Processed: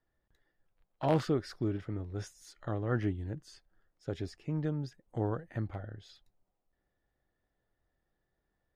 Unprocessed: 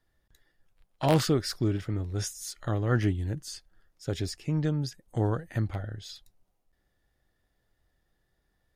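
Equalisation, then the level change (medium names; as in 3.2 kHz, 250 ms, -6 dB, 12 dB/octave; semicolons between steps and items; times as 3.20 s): low-pass 1.3 kHz 6 dB/octave; bass shelf 190 Hz -6.5 dB; -2.5 dB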